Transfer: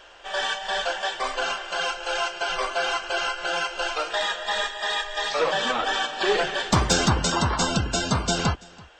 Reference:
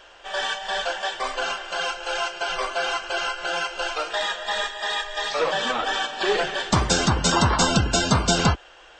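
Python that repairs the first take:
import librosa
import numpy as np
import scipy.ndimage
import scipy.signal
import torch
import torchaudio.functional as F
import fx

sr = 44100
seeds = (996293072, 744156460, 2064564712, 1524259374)

y = fx.fix_declip(x, sr, threshold_db=-9.0)
y = fx.fix_echo_inverse(y, sr, delay_ms=333, level_db=-23.5)
y = fx.gain(y, sr, db=fx.steps((0.0, 0.0), (7.25, 4.0)))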